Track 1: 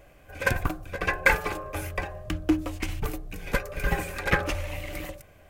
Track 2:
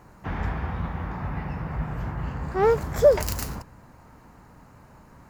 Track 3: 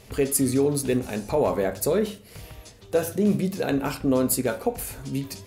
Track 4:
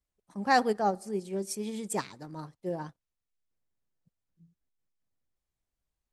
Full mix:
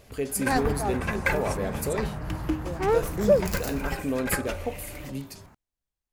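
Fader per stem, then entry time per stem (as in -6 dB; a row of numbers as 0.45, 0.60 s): -5.5, -3.5, -6.5, -3.5 dB; 0.00, 0.25, 0.00, 0.00 s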